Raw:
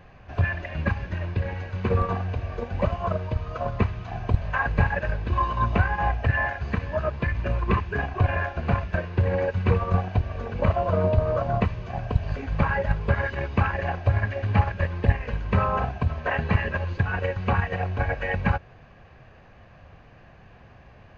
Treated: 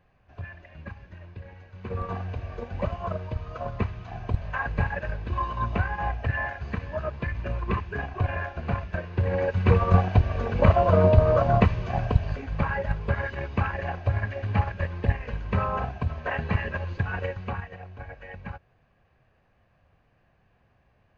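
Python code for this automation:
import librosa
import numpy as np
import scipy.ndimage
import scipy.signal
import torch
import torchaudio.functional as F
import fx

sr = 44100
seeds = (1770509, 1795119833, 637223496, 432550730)

y = fx.gain(x, sr, db=fx.line((1.71, -15.0), (2.16, -4.5), (9.03, -4.5), (9.93, 4.0), (12.03, 4.0), (12.44, -3.5), (17.25, -3.5), (17.8, -15.0)))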